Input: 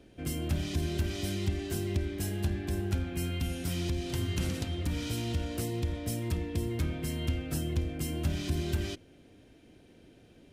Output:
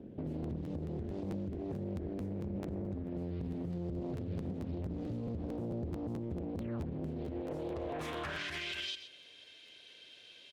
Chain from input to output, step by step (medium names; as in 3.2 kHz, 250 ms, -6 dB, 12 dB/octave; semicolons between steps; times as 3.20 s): painted sound fall, 6.58–6.86 s, 480–3600 Hz -39 dBFS; band-pass sweep 220 Hz -> 3.5 kHz, 7.09–8.92 s; compression 12:1, threshold -48 dBFS, peak gain reduction 14.5 dB; comb 1.9 ms, depth 40%; on a send: delay 126 ms -16.5 dB; on the sum: peak limiter -46.5 dBFS, peak gain reduction 9.5 dB; crackling interface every 0.22 s, samples 512, repeat, from 0.42 s; loudspeaker Doppler distortion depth 0.8 ms; trim +16 dB